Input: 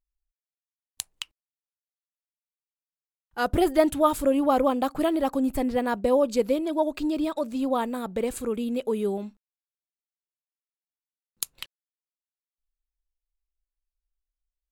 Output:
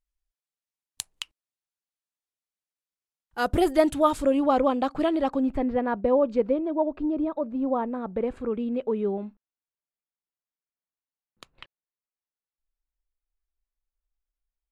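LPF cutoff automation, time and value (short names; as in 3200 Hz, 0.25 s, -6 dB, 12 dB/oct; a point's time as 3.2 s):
3.62 s 12000 Hz
4.61 s 4900 Hz
5.21 s 4900 Hz
5.68 s 1800 Hz
6.35 s 1800 Hz
6.83 s 1100 Hz
7.65 s 1100 Hz
8.53 s 1900 Hz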